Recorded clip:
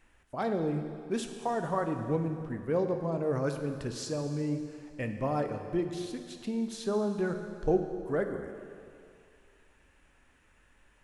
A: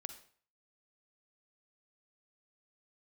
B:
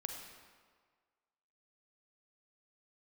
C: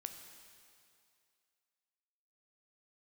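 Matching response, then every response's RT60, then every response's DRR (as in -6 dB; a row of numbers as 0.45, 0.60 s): C; 0.50, 1.7, 2.4 s; 8.5, 3.0, 5.5 dB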